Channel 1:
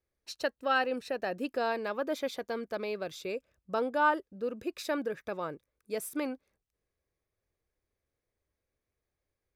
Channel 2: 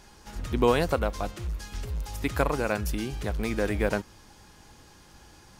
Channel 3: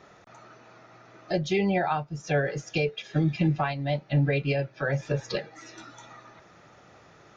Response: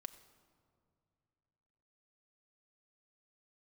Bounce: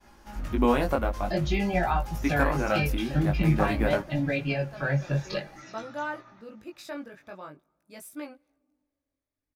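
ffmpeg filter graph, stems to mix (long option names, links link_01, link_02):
-filter_complex "[0:a]adelay=2000,volume=-3dB,asplit=2[link_01][link_02];[link_02]volume=-10.5dB[link_03];[1:a]agate=range=-33dB:threshold=-50dB:ratio=3:detection=peak,equalizer=frequency=125:width_type=o:width=1:gain=-5,equalizer=frequency=250:width_type=o:width=1:gain=3,equalizer=frequency=500:width_type=o:width=1:gain=3,equalizer=frequency=4000:width_type=o:width=1:gain=-6,equalizer=frequency=8000:width_type=o:width=1:gain=-7,volume=2dB,asplit=2[link_04][link_05];[link_05]volume=-9dB[link_06];[2:a]agate=range=-33dB:threshold=-44dB:ratio=3:detection=peak,highshelf=frequency=4200:gain=-6,volume=2dB,asplit=3[link_07][link_08][link_09];[link_08]volume=-5.5dB[link_10];[link_09]apad=whole_len=509489[link_11];[link_01][link_11]sidechaincompress=threshold=-28dB:ratio=8:attack=16:release=390[link_12];[3:a]atrim=start_sample=2205[link_13];[link_03][link_06][link_10]amix=inputs=3:normalize=0[link_14];[link_14][link_13]afir=irnorm=-1:irlink=0[link_15];[link_12][link_04][link_07][link_15]amix=inputs=4:normalize=0,equalizer=frequency=450:width=4.4:gain=-11.5,flanger=delay=17:depth=4.5:speed=0.49"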